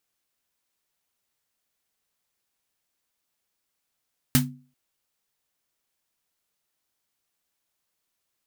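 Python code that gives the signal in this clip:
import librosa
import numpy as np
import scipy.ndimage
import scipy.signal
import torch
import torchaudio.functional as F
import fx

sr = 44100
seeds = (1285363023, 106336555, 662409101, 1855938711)

y = fx.drum_snare(sr, seeds[0], length_s=0.39, hz=140.0, second_hz=250.0, noise_db=0, noise_from_hz=680.0, decay_s=0.4, noise_decay_s=0.16)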